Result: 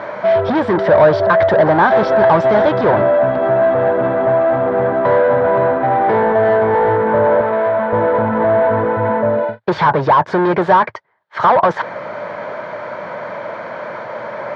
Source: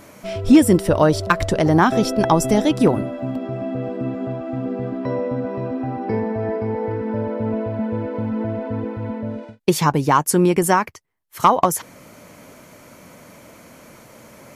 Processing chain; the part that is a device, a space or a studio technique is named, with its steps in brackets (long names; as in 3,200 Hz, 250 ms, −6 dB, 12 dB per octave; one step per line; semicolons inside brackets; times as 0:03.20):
overdrive pedal into a guitar cabinet (mid-hump overdrive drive 30 dB, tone 1,300 Hz, clips at −3.5 dBFS; loudspeaker in its box 95–3,900 Hz, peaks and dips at 110 Hz +5 dB, 270 Hz −10 dB, 600 Hz +7 dB, 930 Hz +6 dB, 1,600 Hz +7 dB, 2,700 Hz −8 dB)
0:07.41–0:07.93: low-shelf EQ 390 Hz −9.5 dB
level −3 dB